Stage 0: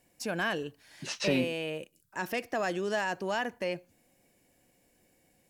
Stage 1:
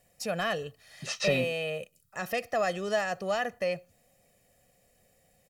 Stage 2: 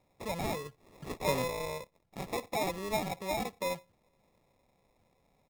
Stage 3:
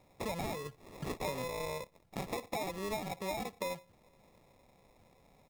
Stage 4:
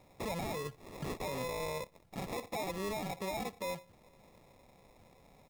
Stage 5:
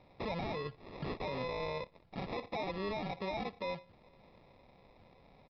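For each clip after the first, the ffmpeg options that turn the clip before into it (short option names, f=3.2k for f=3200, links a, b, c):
-af "aecho=1:1:1.6:0.77"
-af "acrusher=samples=29:mix=1:aa=0.000001,volume=-4.5dB"
-af "acompressor=threshold=-42dB:ratio=6,volume=6.5dB"
-af "alimiter=level_in=11dB:limit=-24dB:level=0:latency=1:release=11,volume=-11dB,volume=3dB"
-af "aresample=11025,aresample=44100"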